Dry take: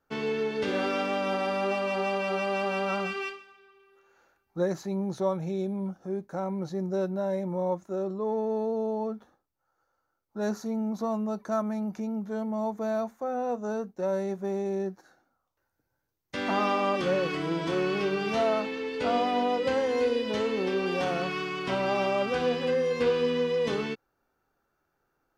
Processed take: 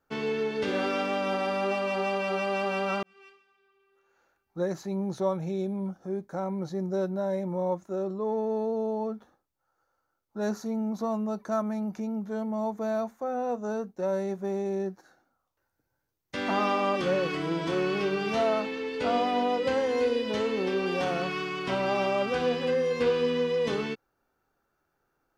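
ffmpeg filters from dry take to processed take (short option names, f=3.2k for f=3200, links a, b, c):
-filter_complex "[0:a]asettb=1/sr,asplit=3[a][b][c];[a]atrim=end=5.854[d];[b]atrim=start=5.85:end=7.34,asetpts=PTS-STARTPTS,afade=t=in:d=0.004:c=qsin,afade=t=out:st=1.486:d=0.004:c=qsin,bandreject=f=2.7k:w=13[e];[c]atrim=start=7.336[f];[d][e]acrossfade=d=0.004:c1=hsin:c2=qsin[g];[g][f]acrossfade=d=0.004:c1=qsin:c2=hsin,asplit=2[h][i];[h]atrim=end=3.03,asetpts=PTS-STARTPTS,afade=t=out:st=3.026:d=0.004:c=hsin[j];[i]atrim=start=3.03,asetpts=PTS-STARTPTS,afade=t=in:d=2.03[k];[j][k]concat=n=2:v=0:a=1"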